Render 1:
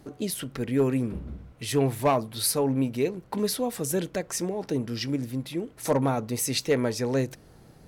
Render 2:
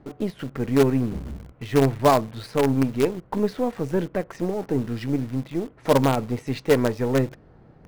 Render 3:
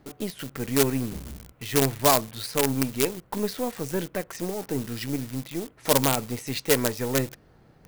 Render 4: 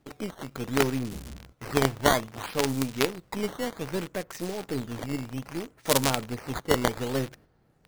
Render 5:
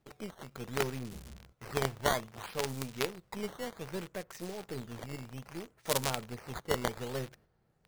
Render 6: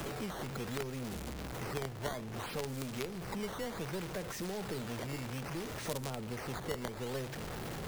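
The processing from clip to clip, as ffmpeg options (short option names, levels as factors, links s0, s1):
-filter_complex "[0:a]lowpass=1800,asplit=2[s0][s1];[s1]acrusher=bits=4:dc=4:mix=0:aa=0.000001,volume=0.596[s2];[s0][s2]amix=inputs=2:normalize=0,volume=1.19"
-af "crystalizer=i=6:c=0,volume=0.531"
-af "agate=range=0.447:threshold=0.00355:ratio=16:detection=peak,acrusher=samples=10:mix=1:aa=0.000001:lfo=1:lforange=16:lforate=0.63,volume=0.75"
-af "equalizer=f=280:w=6.6:g=-10.5,volume=0.422"
-filter_complex "[0:a]aeval=exprs='val(0)+0.5*0.0158*sgn(val(0))':c=same,acrossover=split=170|500[s0][s1][s2];[s0]acompressor=threshold=0.00316:ratio=4[s3];[s1]acompressor=threshold=0.00447:ratio=4[s4];[s2]acompressor=threshold=0.00501:ratio=4[s5];[s3][s4][s5]amix=inputs=3:normalize=0,volume=1.58"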